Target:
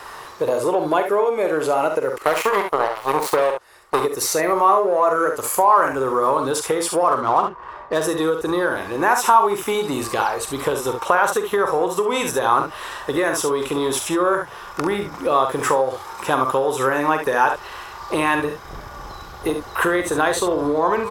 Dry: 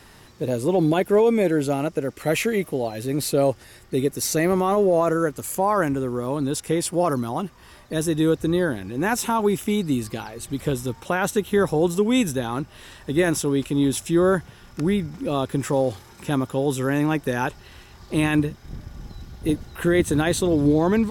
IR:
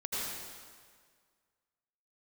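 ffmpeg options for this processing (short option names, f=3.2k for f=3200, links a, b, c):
-filter_complex "[0:a]asplit=2[a][b];[b]asoftclip=type=hard:threshold=-21dB,volume=-10.5dB[c];[a][c]amix=inputs=2:normalize=0,asettb=1/sr,asplit=3[d][e][f];[d]atrim=end=2.184[g];[e]atrim=start=2.18:end=4,asetpts=PTS-STARTPTS,afade=t=in:d=0.004:c=qsin,afade=t=out:st=1.816:d=0.004:c=qsin,aeval=exprs='0.376*(cos(1*acos(clip(val(0)/0.376,-1,1)))-cos(1*PI/2))+0.0668*(cos(7*acos(clip(val(0)/0.376,-1,1)))-cos(7*PI/2))':c=same[h];[f]atrim=start=3.996[i];[g][h]acrossfade=d=0.004:c1=hsin:c2=qsin[j];[j][i]acrossfade=d=0.004:c1=qsin:c2=hsin,asettb=1/sr,asplit=3[k][l][m];[k]atrim=end=7.084[n];[l]atrim=start=7.08:end=8.04,asetpts=PTS-STARTPTS,afade=t=in:d=0.004:c=qsin,afade=t=out:st=0.956:d=0.004:c=qsin,adynamicsmooth=sensitivity=6.5:basefreq=1.2k[o];[m]atrim=start=8.036[p];[n][o]acrossfade=d=0.004:c1=hsin:c2=qsin[q];[q][p]acrossfade=d=0.004:c1=qsin:c2=hsin,lowshelf=f=320:t=q:w=1.5:g=-10,aecho=1:1:45|69:0.376|0.355,acompressor=threshold=-24dB:ratio=5,equalizer=f=1.1k:t=o:w=0.93:g=13.5,volume=4.5dB"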